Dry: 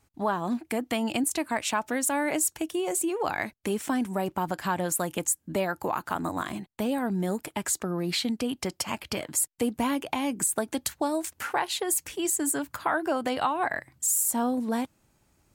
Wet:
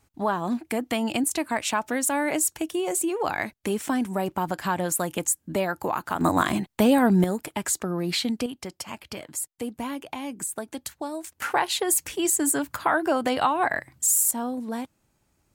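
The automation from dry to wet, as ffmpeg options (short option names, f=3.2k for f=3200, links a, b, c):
-af "asetnsamples=n=441:p=0,asendcmd='6.21 volume volume 9.5dB;7.24 volume volume 2dB;8.46 volume volume -5dB;11.42 volume volume 4dB;14.31 volume volume -3dB',volume=2dB"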